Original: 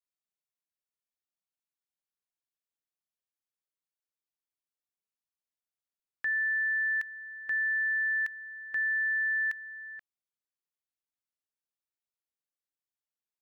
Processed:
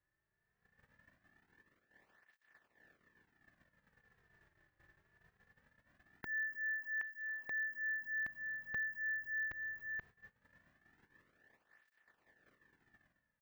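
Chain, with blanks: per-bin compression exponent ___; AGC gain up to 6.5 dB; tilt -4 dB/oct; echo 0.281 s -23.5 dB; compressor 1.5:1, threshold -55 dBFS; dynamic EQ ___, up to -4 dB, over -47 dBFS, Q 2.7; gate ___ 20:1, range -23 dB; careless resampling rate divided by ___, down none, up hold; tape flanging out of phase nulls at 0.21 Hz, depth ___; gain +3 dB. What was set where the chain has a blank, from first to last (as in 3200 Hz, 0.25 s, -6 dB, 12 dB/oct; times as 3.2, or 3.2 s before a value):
0.4, 1700 Hz, -56 dBFS, 2×, 4.5 ms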